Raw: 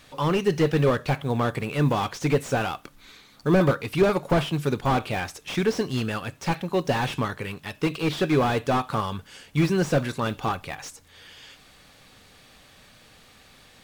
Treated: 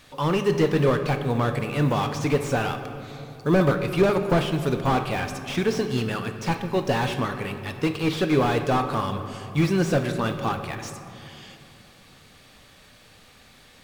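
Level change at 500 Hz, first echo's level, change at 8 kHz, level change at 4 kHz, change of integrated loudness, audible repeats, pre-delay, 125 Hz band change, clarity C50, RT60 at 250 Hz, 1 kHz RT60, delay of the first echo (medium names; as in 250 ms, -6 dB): +1.0 dB, no echo, +0.5 dB, +0.5 dB, +0.5 dB, no echo, 12 ms, +1.0 dB, 8.5 dB, 3.5 s, 2.6 s, no echo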